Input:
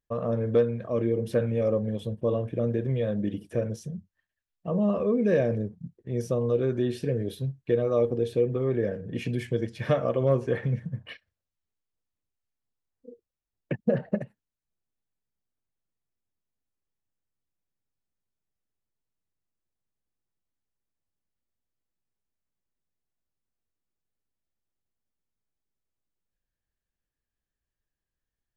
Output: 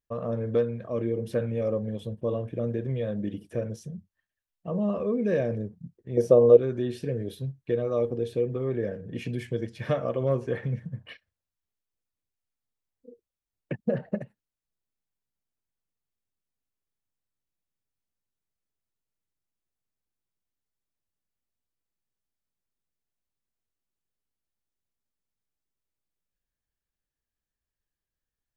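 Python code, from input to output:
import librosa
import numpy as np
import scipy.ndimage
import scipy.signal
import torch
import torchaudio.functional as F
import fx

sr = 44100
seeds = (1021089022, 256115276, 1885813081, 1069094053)

y = fx.peak_eq(x, sr, hz=540.0, db=14.0, octaves=2.0, at=(6.17, 6.57))
y = y * librosa.db_to_amplitude(-2.5)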